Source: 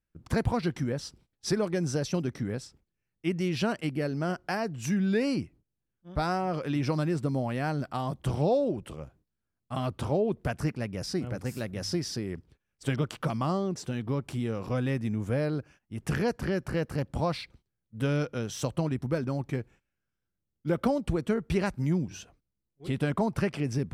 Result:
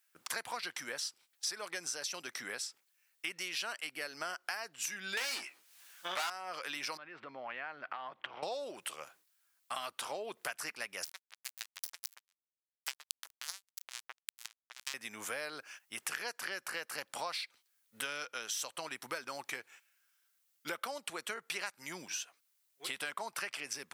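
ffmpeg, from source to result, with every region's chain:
ffmpeg -i in.wav -filter_complex "[0:a]asettb=1/sr,asplit=3[link_01][link_02][link_03];[link_01]atrim=end=5.174[link_04];[link_02]atrim=start=5.17:end=6.3,asetpts=PTS-STARTPTS,afade=type=in:duration=0.004:curve=qsin,afade=type=out:start_time=1.126:duration=0.004:curve=qsin,asplit=2[link_05][link_06];[link_06]highpass=frequency=720:poles=1,volume=29dB,asoftclip=type=tanh:threshold=-16.5dB[link_07];[link_05][link_07]amix=inputs=2:normalize=0,lowpass=frequency=5200:poles=1,volume=-6dB,asplit=2[link_08][link_09];[link_09]adelay=16,volume=-7dB[link_10];[link_08][link_10]amix=inputs=2:normalize=0,atrim=end_sample=49833[link_11];[link_03]atrim=start=6.296[link_12];[link_04][link_11]acrossfade=duration=0.004:curve1=hsin:curve2=qsin[link_13];[link_13][link_12]acrossfade=duration=0.004:curve1=qsin:curve2=hsin,asettb=1/sr,asplit=3[link_14][link_15][link_16];[link_14]atrim=end=6.974[link_17];[link_15]atrim=start=6.97:end=8.43,asetpts=PTS-STARTPTS,afade=type=in:duration=0.004:curve=qsin,afade=type=out:start_time=1.456:duration=0.004:curve=qsin,lowpass=frequency=2700:width=0.5412,lowpass=frequency=2700:width=1.3066,acompressor=threshold=-38dB:ratio=6:attack=3.2:release=140:knee=1:detection=peak[link_18];[link_16]atrim=start=8.426[link_19];[link_17][link_18]acrossfade=duration=0.004:curve1=hsin:curve2=qsin[link_20];[link_20][link_19]acrossfade=duration=0.004:curve1=qsin:curve2=hsin,asettb=1/sr,asplit=3[link_21][link_22][link_23];[link_21]atrim=end=11.044[link_24];[link_22]atrim=start=11.04:end=14.94,asetpts=PTS-STARTPTS,afade=type=in:duration=0.004:curve=qsin,afade=type=out:start_time=3.896:duration=0.004:curve=qsin,highshelf=frequency=2500:gain=6.5,acrossover=split=510|1800[link_25][link_26][link_27];[link_25]acompressor=threshold=-36dB:ratio=4[link_28];[link_26]acompressor=threshold=-46dB:ratio=4[link_29];[link_27]acompressor=threshold=-34dB:ratio=4[link_30];[link_28][link_29][link_30]amix=inputs=3:normalize=0,acrusher=bits=3:mix=0:aa=0.5[link_31];[link_23]atrim=start=14.936[link_32];[link_24][link_31]acrossfade=duration=0.004:curve1=hsin:curve2=qsin[link_33];[link_33][link_32]acrossfade=duration=0.004:curve1=qsin:curve2=hsin,highpass=1300,highshelf=frequency=7600:gain=8,acompressor=threshold=-53dB:ratio=4,volume=14dB" out.wav

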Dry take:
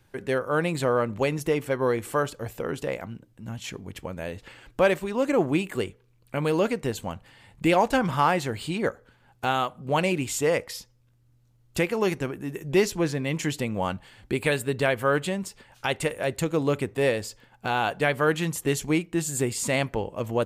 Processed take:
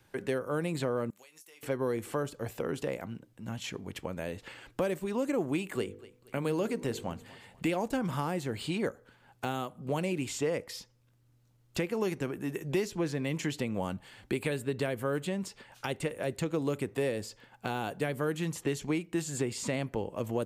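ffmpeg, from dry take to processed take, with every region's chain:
ffmpeg -i in.wav -filter_complex "[0:a]asettb=1/sr,asplit=3[link_01][link_02][link_03];[link_01]atrim=end=1.104[link_04];[link_02]atrim=start=1.1:end=1.63,asetpts=PTS-STARTPTS,afade=type=in:duration=0.004:curve=qsin,afade=type=out:start_time=0.526:duration=0.004:curve=qsin,aderivative,acompressor=threshold=-50dB:ratio=16:attack=3.2:release=140:knee=1:detection=peak,asplit=2[link_05][link_06];[link_06]adelay=24,volume=-10dB[link_07];[link_05][link_07]amix=inputs=2:normalize=0,atrim=end_sample=23373[link_08];[link_03]atrim=start=1.626[link_09];[link_04][link_08]acrossfade=duration=0.004:curve1=hsin:curve2=qsin[link_10];[link_10][link_09]acrossfade=duration=0.004:curve1=qsin:curve2=hsin,asettb=1/sr,asplit=3[link_11][link_12][link_13];[link_11]atrim=end=5.754[link_14];[link_12]atrim=start=5.75:end=7.71,asetpts=PTS-STARTPTS,afade=type=in:duration=0.004:curve=qsin,afade=type=out:start_time=1.956:duration=0.004:curve=qsin,bandreject=frequency=49.81:width_type=h:width=4,bandreject=frequency=99.62:width_type=h:width=4,bandreject=frequency=149.43:width_type=h:width=4,bandreject=frequency=199.24:width_type=h:width=4,bandreject=frequency=249.05:width_type=h:width=4,bandreject=frequency=298.86:width_type=h:width=4,bandreject=frequency=348.67:width_type=h:width=4,bandreject=frequency=398.48:width_type=h:width=4,bandreject=frequency=448.29:width_type=h:width=4,bandreject=frequency=498.1:width_type=h:width=4,aecho=1:1:237|474|711:0.0708|0.0269|0.0102,atrim=end_sample=86436[link_15];[link_13]atrim=start=7.706[link_16];[link_14][link_15]acrossfade=duration=0.004:curve1=hsin:curve2=qsin[link_17];[link_17][link_16]acrossfade=duration=0.004:curve1=qsin:curve2=hsin,lowshelf=frequency=93:gain=-10.5,acrossover=split=420|6300[link_18][link_19][link_20];[link_18]acompressor=threshold=-30dB:ratio=4[link_21];[link_19]acompressor=threshold=-37dB:ratio=4[link_22];[link_20]acompressor=threshold=-51dB:ratio=4[link_23];[link_21][link_22][link_23]amix=inputs=3:normalize=0" out.wav

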